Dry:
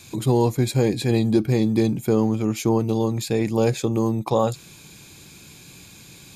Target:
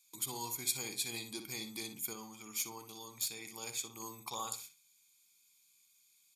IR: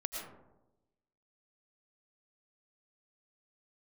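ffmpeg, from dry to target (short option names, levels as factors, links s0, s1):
-filter_complex "[0:a]agate=range=0.1:threshold=0.0112:ratio=16:detection=peak,aderivative,aecho=1:1:0.9:0.56,asplit=2[s0][s1];[s1]adelay=60,lowpass=f=3300:p=1,volume=0.447,asplit=2[s2][s3];[s3]adelay=60,lowpass=f=3300:p=1,volume=0.27,asplit=2[s4][s5];[s5]adelay=60,lowpass=f=3300:p=1,volume=0.27[s6];[s0][s2][s4][s6]amix=inputs=4:normalize=0,asettb=1/sr,asplit=3[s7][s8][s9];[s7]atrim=end=2.134[s10];[s8]atrim=start=2.13:end=4,asetpts=PTS-STARTPTS,afade=t=in:d=0.004:c=qsin,afade=t=out:st=1.866:d=0.004:c=qsin,aeval=exprs='0.119*(cos(1*acos(clip(val(0)/0.119,-1,1)))-cos(1*PI/2))+0.0133*(cos(3*acos(clip(val(0)/0.119,-1,1)))-cos(3*PI/2))':c=same[s11];[s9]atrim=start=3.996[s12];[s10][s11]acrossfade=d=0.004:c1=hsin:c2=qsin[s13];[s13][s12]acrossfade=d=0.004:c1=qsin:c2=hsin,volume=0.841"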